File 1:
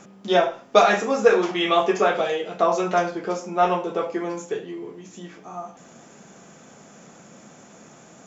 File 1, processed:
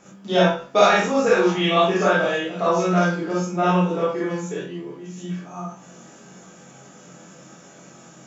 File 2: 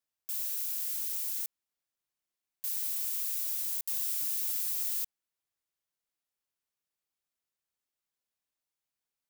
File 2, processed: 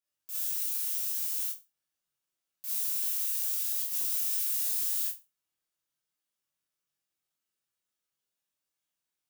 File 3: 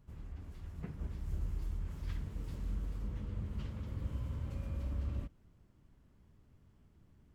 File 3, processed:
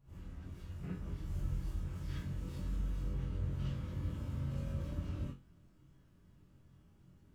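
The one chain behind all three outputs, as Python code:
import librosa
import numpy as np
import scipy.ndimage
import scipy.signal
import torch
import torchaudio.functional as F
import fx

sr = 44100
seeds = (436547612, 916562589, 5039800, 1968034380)

y = fx.room_flutter(x, sr, wall_m=3.8, rt60_s=0.24)
y = fx.dynamic_eq(y, sr, hz=170.0, q=2.0, threshold_db=-42.0, ratio=4.0, max_db=6)
y = fx.rev_gated(y, sr, seeds[0], gate_ms=80, shape='rising', drr_db=-6.0)
y = y * librosa.db_to_amplitude(-6.5)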